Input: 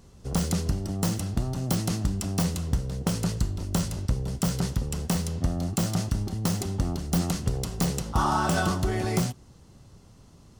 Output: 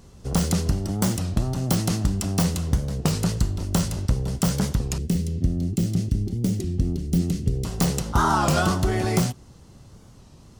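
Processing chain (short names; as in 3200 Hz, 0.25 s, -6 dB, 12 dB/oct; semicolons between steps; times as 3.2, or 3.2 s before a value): 4.98–7.65 EQ curve 390 Hz 0 dB, 670 Hz -16 dB, 960 Hz -22 dB, 1400 Hz -19 dB, 2100 Hz -9 dB; record warp 33 1/3 rpm, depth 160 cents; gain +4 dB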